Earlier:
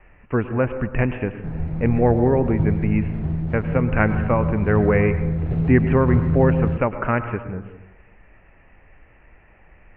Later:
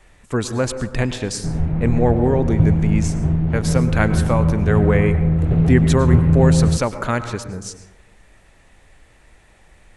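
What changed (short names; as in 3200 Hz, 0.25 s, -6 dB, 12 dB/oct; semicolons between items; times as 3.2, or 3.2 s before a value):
speech: remove steep low-pass 2800 Hz 96 dB/oct; background +6.0 dB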